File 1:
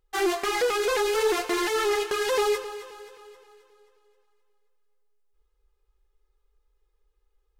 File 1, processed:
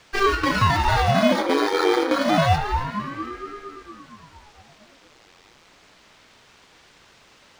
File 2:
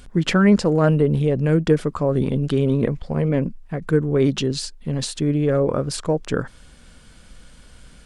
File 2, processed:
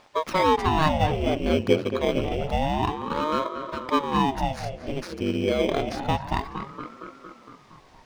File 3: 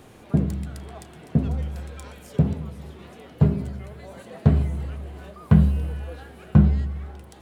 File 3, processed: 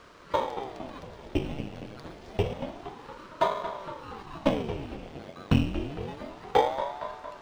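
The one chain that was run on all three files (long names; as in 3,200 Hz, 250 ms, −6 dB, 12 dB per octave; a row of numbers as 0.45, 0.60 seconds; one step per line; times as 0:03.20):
samples in bit-reversed order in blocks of 16 samples
high-pass filter 360 Hz 6 dB per octave
in parallel at −6.5 dB: log-companded quantiser 4 bits
on the sum: background noise white −51 dBFS
high-frequency loss of the air 150 metres
on a send: tape delay 231 ms, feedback 72%, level −8 dB, low-pass 2,500 Hz
on the sum: ring modulator whose carrier an LFO sweeps 430 Hz, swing 90%, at 0.28 Hz
normalise the peak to −6 dBFS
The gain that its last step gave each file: +8.0, −1.0, 0.0 decibels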